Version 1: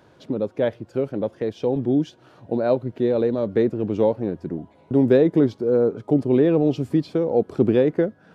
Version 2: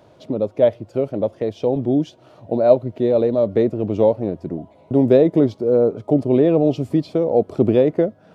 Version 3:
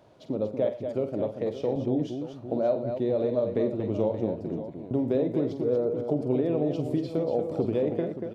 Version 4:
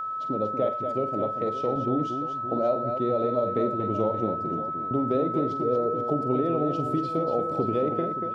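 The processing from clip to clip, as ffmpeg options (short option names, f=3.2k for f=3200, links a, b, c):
-af "equalizer=f=100:t=o:w=0.33:g=4,equalizer=f=630:t=o:w=0.33:g=9,equalizer=f=1.6k:t=o:w=0.33:g=-8,volume=1.5dB"
-af "acompressor=threshold=-16dB:ratio=6,aecho=1:1:47|94|117|236|576:0.335|0.106|0.126|0.447|0.251,volume=-7dB"
-af "aeval=exprs='val(0)+0.0355*sin(2*PI*1300*n/s)':c=same"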